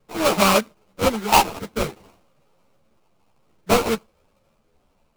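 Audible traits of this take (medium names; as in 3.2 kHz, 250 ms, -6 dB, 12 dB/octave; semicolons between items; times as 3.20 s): phasing stages 12, 0.54 Hz, lowest notch 550–1900 Hz; aliases and images of a low sample rate 1.8 kHz, jitter 20%; a shimmering, thickened sound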